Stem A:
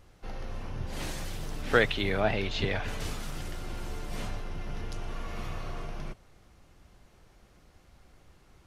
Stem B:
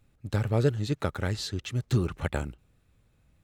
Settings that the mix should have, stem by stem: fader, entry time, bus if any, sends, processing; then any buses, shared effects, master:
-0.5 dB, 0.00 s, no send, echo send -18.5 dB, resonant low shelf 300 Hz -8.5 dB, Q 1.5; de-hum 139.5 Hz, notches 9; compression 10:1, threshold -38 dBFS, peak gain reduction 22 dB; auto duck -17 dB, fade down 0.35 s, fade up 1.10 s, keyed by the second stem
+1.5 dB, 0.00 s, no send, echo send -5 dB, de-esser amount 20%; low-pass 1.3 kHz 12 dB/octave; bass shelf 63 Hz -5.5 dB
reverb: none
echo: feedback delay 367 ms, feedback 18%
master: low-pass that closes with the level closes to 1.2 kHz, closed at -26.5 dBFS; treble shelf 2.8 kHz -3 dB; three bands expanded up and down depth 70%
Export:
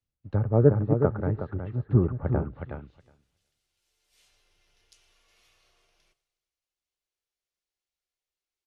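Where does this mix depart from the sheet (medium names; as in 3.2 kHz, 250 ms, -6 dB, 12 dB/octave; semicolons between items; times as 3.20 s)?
stem A -0.5 dB -> -11.0 dB; master: missing treble shelf 2.8 kHz -3 dB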